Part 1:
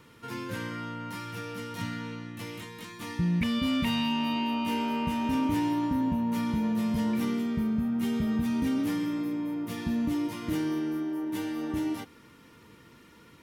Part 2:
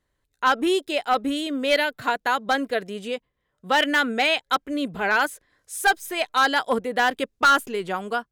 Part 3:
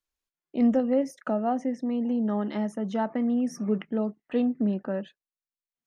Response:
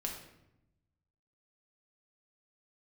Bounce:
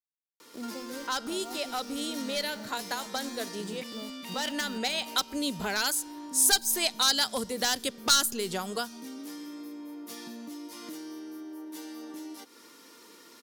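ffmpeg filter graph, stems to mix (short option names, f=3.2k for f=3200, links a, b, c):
-filter_complex "[0:a]highpass=f=280:w=0.5412,highpass=f=280:w=1.3066,acompressor=threshold=-43dB:ratio=5,adelay=400,volume=2dB[a];[1:a]adelay=650,volume=1dB,asplit=2[b][c];[c]volume=-24dB[d];[2:a]acompressor=threshold=-36dB:ratio=2,aeval=exprs='val(0)*gte(abs(val(0)),0.0119)':c=same,volume=-8.5dB,asplit=2[e][f];[f]apad=whole_len=395453[g];[b][g]sidechaincompress=threshold=-49dB:ratio=8:attack=6.3:release=352[h];[3:a]atrim=start_sample=2205[i];[d][i]afir=irnorm=-1:irlink=0[j];[a][h][e][j]amix=inputs=4:normalize=0,highshelf=f=3.6k:t=q:w=1.5:g=8,acrossover=split=160|3000[k][l][m];[l]acompressor=threshold=-31dB:ratio=6[n];[k][n][m]amix=inputs=3:normalize=0"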